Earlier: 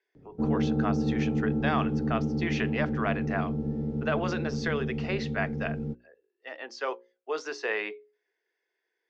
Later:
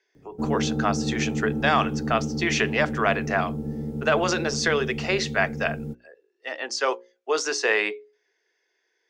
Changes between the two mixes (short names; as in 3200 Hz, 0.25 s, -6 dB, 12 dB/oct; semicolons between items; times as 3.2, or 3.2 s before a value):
speech +7.0 dB; master: remove air absorption 170 m